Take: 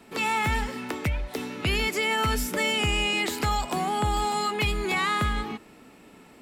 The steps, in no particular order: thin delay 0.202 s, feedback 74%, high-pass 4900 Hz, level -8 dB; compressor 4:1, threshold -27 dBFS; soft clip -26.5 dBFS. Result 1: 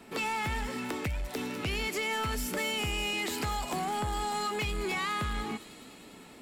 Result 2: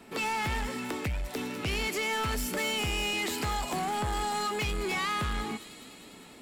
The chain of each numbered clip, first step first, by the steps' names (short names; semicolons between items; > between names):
compressor > thin delay > soft clip; thin delay > soft clip > compressor